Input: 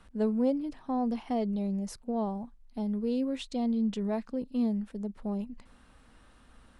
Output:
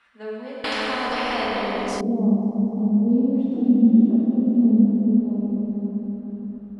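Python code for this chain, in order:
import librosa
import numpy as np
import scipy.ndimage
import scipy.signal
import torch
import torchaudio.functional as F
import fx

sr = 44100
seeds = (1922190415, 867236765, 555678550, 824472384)

y = fx.sine_speech(x, sr, at=(3.53, 4.36))
y = y + 10.0 ** (-9.0 / 20.0) * np.pad(y, (int(540 * sr / 1000.0), 0))[:len(y)]
y = fx.rev_plate(y, sr, seeds[0], rt60_s=4.2, hf_ratio=0.95, predelay_ms=0, drr_db=-8.0)
y = fx.filter_sweep_bandpass(y, sr, from_hz=2100.0, to_hz=220.0, start_s=0.6, end_s=2.31, q=1.6)
y = fx.spectral_comp(y, sr, ratio=4.0, at=(0.64, 2.01))
y = y * librosa.db_to_amplitude(5.5)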